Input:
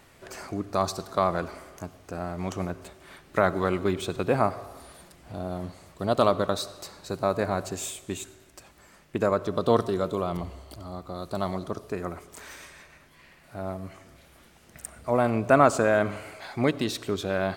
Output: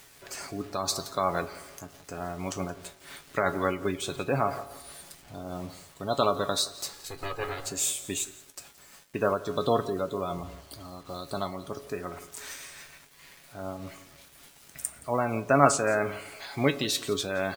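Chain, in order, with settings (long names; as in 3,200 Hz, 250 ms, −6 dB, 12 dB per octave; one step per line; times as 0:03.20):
0:06.93–0:07.67: lower of the sound and its delayed copy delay 2.4 ms
gate on every frequency bin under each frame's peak −30 dB strong
high-shelf EQ 2,400 Hz +11.5 dB
bit-depth reduction 8 bits, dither none
tuned comb filter 140 Hz, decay 0.19 s, harmonics all, mix 70%
single-tap delay 172 ms −19 dB
amplitude modulation by smooth noise, depth 60%
level +6 dB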